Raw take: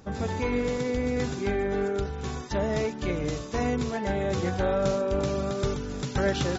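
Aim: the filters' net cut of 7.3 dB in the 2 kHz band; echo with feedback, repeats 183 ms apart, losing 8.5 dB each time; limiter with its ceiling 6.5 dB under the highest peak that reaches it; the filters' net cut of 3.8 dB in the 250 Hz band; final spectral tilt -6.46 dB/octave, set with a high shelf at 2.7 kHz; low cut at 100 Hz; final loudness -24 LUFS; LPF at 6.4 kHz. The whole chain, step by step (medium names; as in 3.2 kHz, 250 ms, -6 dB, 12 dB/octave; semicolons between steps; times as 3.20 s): high-pass 100 Hz; low-pass 6.4 kHz; peaking EQ 250 Hz -4.5 dB; peaking EQ 2 kHz -6 dB; treble shelf 2.7 kHz -8 dB; peak limiter -23.5 dBFS; feedback delay 183 ms, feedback 38%, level -8.5 dB; trim +8.5 dB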